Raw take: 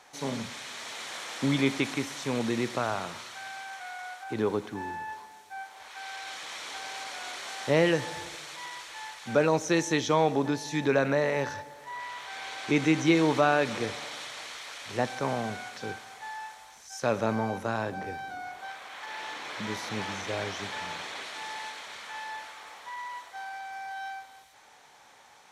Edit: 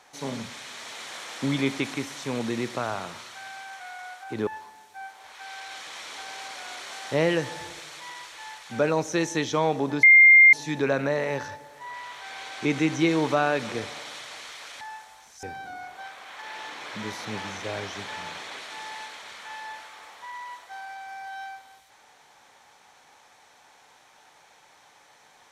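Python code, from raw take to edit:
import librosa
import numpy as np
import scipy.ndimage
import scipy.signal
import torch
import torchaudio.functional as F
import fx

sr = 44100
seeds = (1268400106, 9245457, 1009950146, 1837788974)

y = fx.edit(x, sr, fx.cut(start_s=4.47, length_s=0.56),
    fx.insert_tone(at_s=10.59, length_s=0.5, hz=2110.0, db=-9.5),
    fx.cut(start_s=14.87, length_s=1.44),
    fx.cut(start_s=16.93, length_s=1.14), tone=tone)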